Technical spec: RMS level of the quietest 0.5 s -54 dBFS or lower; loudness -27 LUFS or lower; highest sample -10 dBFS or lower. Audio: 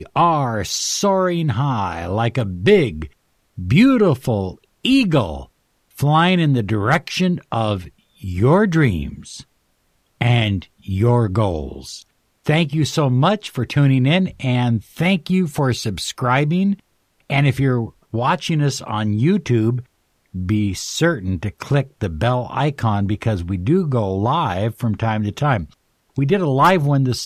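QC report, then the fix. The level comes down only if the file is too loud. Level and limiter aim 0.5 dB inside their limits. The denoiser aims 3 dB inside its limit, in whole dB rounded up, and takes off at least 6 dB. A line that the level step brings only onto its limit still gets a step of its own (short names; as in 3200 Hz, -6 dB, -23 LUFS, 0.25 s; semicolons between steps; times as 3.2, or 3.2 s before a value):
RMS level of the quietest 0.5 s -64 dBFS: OK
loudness -18.5 LUFS: fail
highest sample -3.0 dBFS: fail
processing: gain -9 dB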